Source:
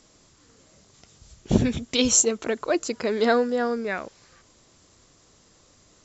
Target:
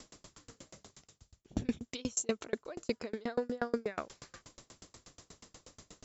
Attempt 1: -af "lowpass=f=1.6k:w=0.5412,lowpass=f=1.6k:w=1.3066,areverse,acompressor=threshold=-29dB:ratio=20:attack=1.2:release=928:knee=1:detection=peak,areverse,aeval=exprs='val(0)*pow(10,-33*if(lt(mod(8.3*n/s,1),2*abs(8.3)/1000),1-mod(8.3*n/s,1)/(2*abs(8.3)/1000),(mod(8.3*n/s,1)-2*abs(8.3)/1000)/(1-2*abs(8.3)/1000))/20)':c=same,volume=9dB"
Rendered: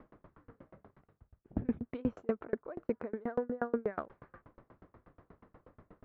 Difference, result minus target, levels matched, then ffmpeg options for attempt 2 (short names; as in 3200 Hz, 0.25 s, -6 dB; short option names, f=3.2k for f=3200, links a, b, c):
2000 Hz band -4.0 dB
-af "areverse,acompressor=threshold=-29dB:ratio=20:attack=1.2:release=928:knee=1:detection=peak,areverse,aeval=exprs='val(0)*pow(10,-33*if(lt(mod(8.3*n/s,1),2*abs(8.3)/1000),1-mod(8.3*n/s,1)/(2*abs(8.3)/1000),(mod(8.3*n/s,1)-2*abs(8.3)/1000)/(1-2*abs(8.3)/1000))/20)':c=same,volume=9dB"